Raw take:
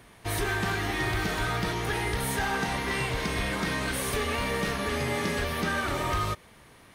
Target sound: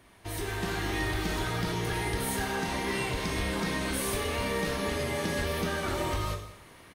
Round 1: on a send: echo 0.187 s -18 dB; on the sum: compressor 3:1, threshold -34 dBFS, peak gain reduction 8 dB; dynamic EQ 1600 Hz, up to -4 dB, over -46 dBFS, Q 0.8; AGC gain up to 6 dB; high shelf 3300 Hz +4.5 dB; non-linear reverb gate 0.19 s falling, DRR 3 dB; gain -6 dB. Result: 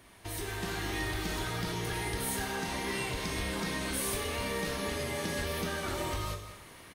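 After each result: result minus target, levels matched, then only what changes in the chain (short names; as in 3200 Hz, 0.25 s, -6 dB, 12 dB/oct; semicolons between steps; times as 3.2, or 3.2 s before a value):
compressor: peak gain reduction +4.5 dB; 8000 Hz band +3.0 dB
change: compressor 3:1, threshold -27.5 dBFS, peak gain reduction 3.5 dB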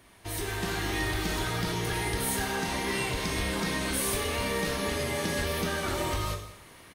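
8000 Hz band +3.0 dB
remove: high shelf 3300 Hz +4.5 dB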